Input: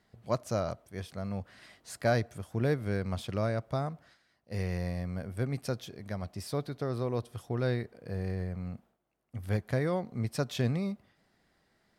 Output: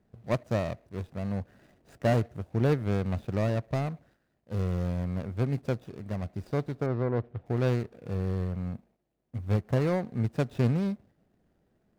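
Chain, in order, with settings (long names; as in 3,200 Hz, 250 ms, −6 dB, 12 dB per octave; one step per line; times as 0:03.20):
running median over 41 samples
0:06.86–0:07.46: low-pass filter 2,200 Hz 12 dB per octave
level +4.5 dB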